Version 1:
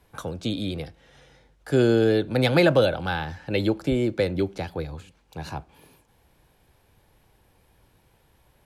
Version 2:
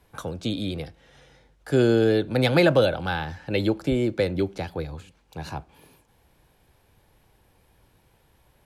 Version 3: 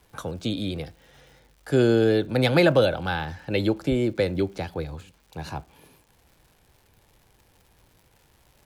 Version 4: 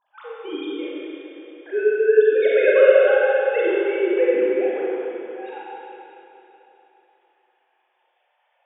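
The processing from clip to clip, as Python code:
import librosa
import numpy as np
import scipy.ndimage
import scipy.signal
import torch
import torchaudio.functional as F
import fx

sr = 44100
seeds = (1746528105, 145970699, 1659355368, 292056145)

y1 = x
y2 = fx.dmg_crackle(y1, sr, seeds[0], per_s=230.0, level_db=-47.0)
y3 = fx.sine_speech(y2, sr)
y3 = fx.rev_schroeder(y3, sr, rt60_s=3.2, comb_ms=31, drr_db=-7.0)
y3 = F.gain(torch.from_numpy(y3), -2.5).numpy()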